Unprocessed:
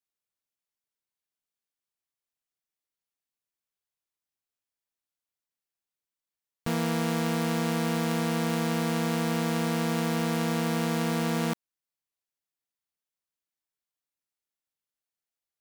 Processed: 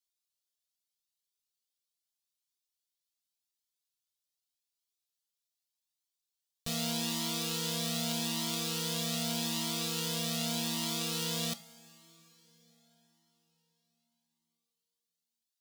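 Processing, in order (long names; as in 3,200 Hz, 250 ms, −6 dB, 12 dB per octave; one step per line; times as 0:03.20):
high shelf with overshoot 2,600 Hz +12 dB, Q 1.5
coupled-rooms reverb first 0.3 s, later 4.8 s, from −19 dB, DRR 10 dB
flanger whose copies keep moving one way rising 0.83 Hz
level −5 dB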